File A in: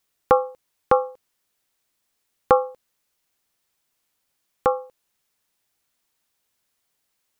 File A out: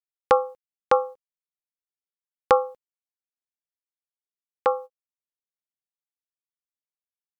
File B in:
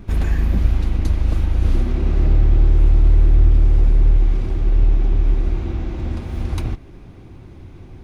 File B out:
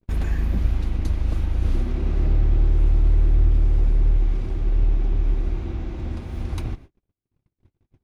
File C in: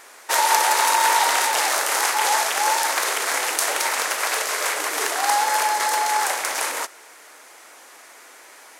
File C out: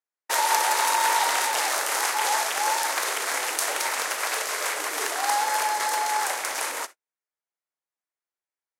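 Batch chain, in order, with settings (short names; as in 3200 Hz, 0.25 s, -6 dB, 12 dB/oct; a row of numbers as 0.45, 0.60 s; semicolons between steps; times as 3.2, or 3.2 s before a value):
gate -33 dBFS, range -48 dB; match loudness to -24 LUFS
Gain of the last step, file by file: -1.5, -5.0, -4.0 dB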